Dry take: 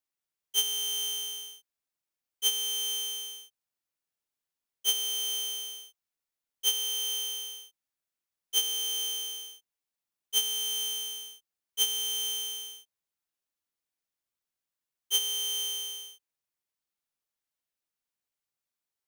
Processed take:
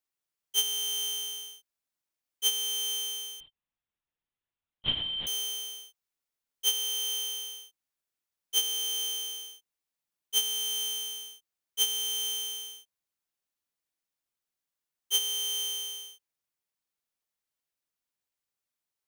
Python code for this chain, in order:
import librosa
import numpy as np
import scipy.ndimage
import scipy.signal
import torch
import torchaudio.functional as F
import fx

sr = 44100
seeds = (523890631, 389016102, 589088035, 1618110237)

y = fx.lpc_vocoder(x, sr, seeds[0], excitation='whisper', order=8, at=(3.4, 5.27))